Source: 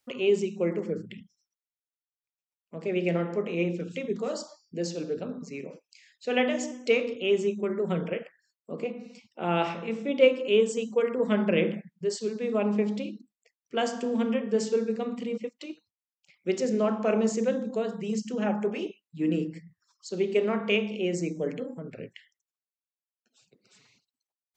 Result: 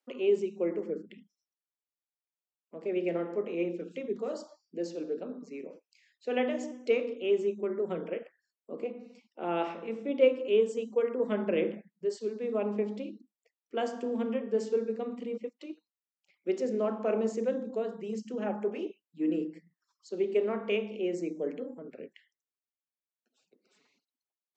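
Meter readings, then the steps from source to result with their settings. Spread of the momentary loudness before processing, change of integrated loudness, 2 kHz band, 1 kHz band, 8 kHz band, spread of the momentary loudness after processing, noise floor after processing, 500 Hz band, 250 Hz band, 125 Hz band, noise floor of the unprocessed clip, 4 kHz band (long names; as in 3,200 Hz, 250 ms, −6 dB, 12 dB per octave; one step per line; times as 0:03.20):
14 LU, −4.0 dB, −8.5 dB, −5.0 dB, below −10 dB, 13 LU, below −85 dBFS, −3.0 dB, −5.5 dB, −11.0 dB, below −85 dBFS, −9.5 dB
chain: high-pass filter 260 Hz 24 dB per octave
spectral tilt −2.5 dB per octave
level −5.5 dB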